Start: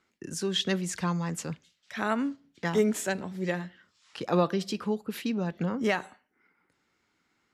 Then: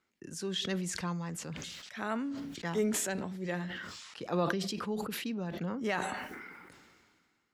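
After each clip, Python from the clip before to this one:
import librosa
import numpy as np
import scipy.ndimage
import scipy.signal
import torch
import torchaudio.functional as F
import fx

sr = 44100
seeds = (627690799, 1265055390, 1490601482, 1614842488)

y = fx.sustainer(x, sr, db_per_s=31.0)
y = F.gain(torch.from_numpy(y), -7.0).numpy()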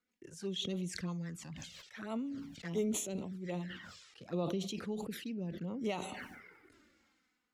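y = fx.env_flanger(x, sr, rest_ms=4.1, full_db=-31.5)
y = fx.rotary_switch(y, sr, hz=6.0, then_hz=0.8, switch_at_s=2.75)
y = F.gain(torch.from_numpy(y), -1.0).numpy()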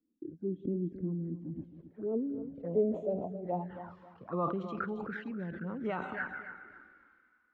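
y = fx.filter_sweep_lowpass(x, sr, from_hz=310.0, to_hz=1500.0, start_s=1.45, end_s=4.99, q=7.8)
y = fx.echo_feedback(y, sr, ms=270, feedback_pct=28, wet_db=-12.0)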